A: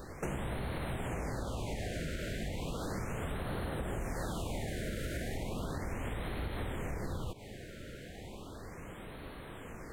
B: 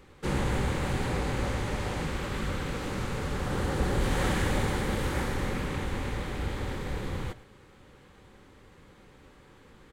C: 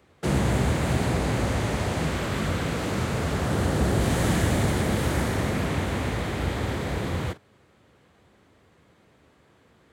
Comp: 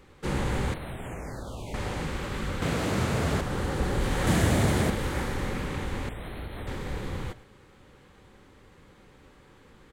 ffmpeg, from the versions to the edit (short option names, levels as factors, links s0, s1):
-filter_complex "[0:a]asplit=2[s0][s1];[2:a]asplit=2[s2][s3];[1:a]asplit=5[s4][s5][s6][s7][s8];[s4]atrim=end=0.742[s9];[s0]atrim=start=0.738:end=1.742[s10];[s5]atrim=start=1.738:end=2.622[s11];[s2]atrim=start=2.618:end=3.412[s12];[s6]atrim=start=3.408:end=4.272[s13];[s3]atrim=start=4.268:end=4.902[s14];[s7]atrim=start=4.898:end=6.092[s15];[s1]atrim=start=6.088:end=6.672[s16];[s8]atrim=start=6.668[s17];[s9][s10]acrossfade=d=0.004:c1=hsin:c2=hsin[s18];[s18][s11]acrossfade=d=0.004:c1=hsin:c2=hsin[s19];[s19][s12]acrossfade=d=0.004:c1=hsin:c2=hsin[s20];[s20][s13]acrossfade=d=0.004:c1=hsin:c2=hsin[s21];[s21][s14]acrossfade=d=0.004:c1=hsin:c2=hsin[s22];[s22][s15]acrossfade=d=0.004:c1=hsin:c2=hsin[s23];[s23][s16]acrossfade=d=0.004:c1=hsin:c2=hsin[s24];[s24][s17]acrossfade=d=0.004:c1=hsin:c2=hsin"